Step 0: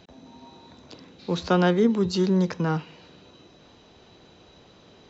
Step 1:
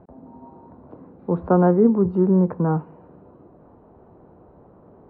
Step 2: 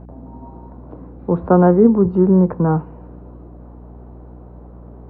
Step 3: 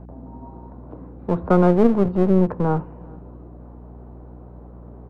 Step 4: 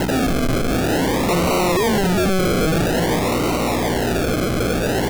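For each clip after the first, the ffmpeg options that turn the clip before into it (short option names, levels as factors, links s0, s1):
-af "lowpass=f=1100:w=0.5412,lowpass=f=1100:w=1.3066,volume=1.68"
-af "aeval=exprs='val(0)+0.00794*(sin(2*PI*60*n/s)+sin(2*PI*2*60*n/s)/2+sin(2*PI*3*60*n/s)/3+sin(2*PI*4*60*n/s)/4+sin(2*PI*5*60*n/s)/5)':c=same,volume=1.68"
-filter_complex "[0:a]acrossover=split=710[s0][s1];[s0]aeval=exprs='clip(val(0),-1,0.075)':c=same[s2];[s2][s1]amix=inputs=2:normalize=0,asplit=2[s3][s4];[s4]adelay=408.2,volume=0.0501,highshelf=f=4000:g=-9.18[s5];[s3][s5]amix=inputs=2:normalize=0,volume=0.794"
-filter_complex "[0:a]asplit=2[s0][s1];[s1]highpass=f=720:p=1,volume=141,asoftclip=type=tanh:threshold=0.708[s2];[s0][s2]amix=inputs=2:normalize=0,lowpass=f=1200:p=1,volume=0.501,acrusher=samples=37:mix=1:aa=0.000001:lfo=1:lforange=22.2:lforate=0.5,volume=6.68,asoftclip=hard,volume=0.15"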